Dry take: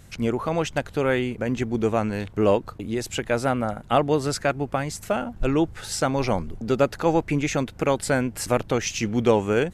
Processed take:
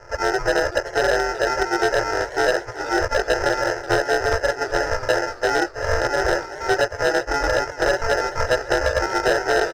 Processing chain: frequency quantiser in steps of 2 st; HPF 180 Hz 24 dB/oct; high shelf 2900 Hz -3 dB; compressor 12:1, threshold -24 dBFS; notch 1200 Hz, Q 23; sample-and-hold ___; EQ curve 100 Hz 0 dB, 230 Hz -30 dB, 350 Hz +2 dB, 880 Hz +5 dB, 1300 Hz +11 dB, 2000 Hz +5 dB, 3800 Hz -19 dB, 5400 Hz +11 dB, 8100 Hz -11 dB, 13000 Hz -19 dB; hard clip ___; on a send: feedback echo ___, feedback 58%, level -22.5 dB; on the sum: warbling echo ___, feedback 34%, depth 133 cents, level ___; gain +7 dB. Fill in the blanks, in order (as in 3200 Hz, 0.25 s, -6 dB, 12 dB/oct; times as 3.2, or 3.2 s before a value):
39×, -17 dBFS, 1.174 s, 0.379 s, -15 dB